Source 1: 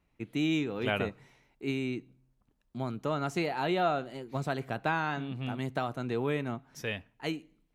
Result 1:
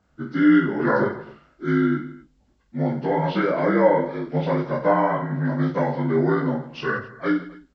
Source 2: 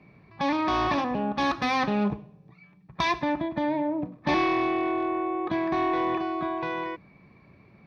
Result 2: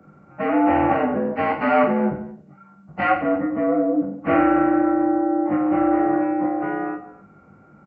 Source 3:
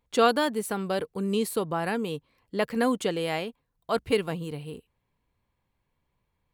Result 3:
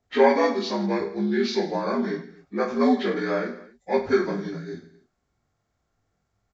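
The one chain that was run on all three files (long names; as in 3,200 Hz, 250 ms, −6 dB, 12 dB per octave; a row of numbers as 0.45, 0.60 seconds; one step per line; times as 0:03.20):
partials spread apart or drawn together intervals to 77%
reverse bouncing-ball delay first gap 20 ms, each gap 1.5×, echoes 5
normalise the peak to −6 dBFS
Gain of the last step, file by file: +10.0, +5.5, +2.5 decibels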